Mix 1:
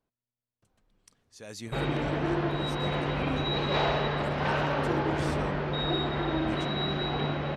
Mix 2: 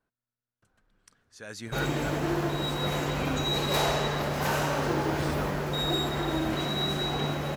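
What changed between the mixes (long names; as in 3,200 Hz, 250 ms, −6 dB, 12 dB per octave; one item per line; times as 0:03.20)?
speech: add parametric band 1,500 Hz +11 dB 0.52 octaves
background: remove low-pass filter 3,800 Hz 24 dB per octave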